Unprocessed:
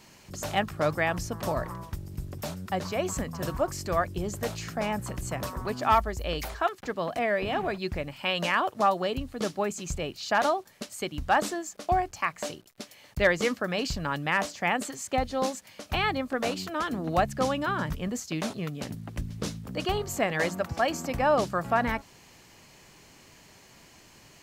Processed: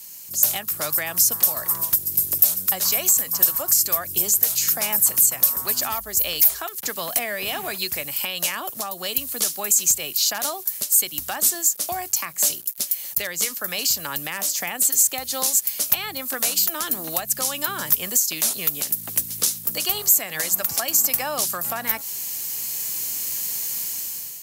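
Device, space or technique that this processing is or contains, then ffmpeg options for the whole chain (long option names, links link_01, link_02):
FM broadcast chain: -filter_complex "[0:a]highpass=79,dynaudnorm=framelen=270:gausssize=5:maxgain=13dB,acrossover=split=310|710[link_01][link_02][link_03];[link_01]acompressor=threshold=-35dB:ratio=4[link_04];[link_02]acompressor=threshold=-30dB:ratio=4[link_05];[link_03]acompressor=threshold=-23dB:ratio=4[link_06];[link_04][link_05][link_06]amix=inputs=3:normalize=0,aemphasis=mode=production:type=75fm,alimiter=limit=-12.5dB:level=0:latency=1:release=385,asoftclip=type=hard:threshold=-14.5dB,lowpass=frequency=15000:width=0.5412,lowpass=frequency=15000:width=1.3066,aemphasis=mode=production:type=75fm,volume=-5.5dB"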